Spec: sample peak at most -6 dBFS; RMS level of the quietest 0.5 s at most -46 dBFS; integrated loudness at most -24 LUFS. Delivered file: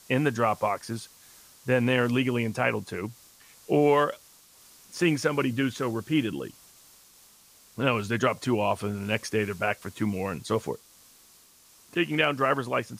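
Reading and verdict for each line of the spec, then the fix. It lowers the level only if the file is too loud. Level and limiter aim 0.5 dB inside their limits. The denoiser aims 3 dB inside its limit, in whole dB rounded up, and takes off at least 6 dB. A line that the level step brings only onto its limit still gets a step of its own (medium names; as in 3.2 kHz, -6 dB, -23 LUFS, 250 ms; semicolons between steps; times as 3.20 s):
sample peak -9.0 dBFS: pass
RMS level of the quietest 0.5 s -57 dBFS: pass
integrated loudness -27.0 LUFS: pass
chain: none needed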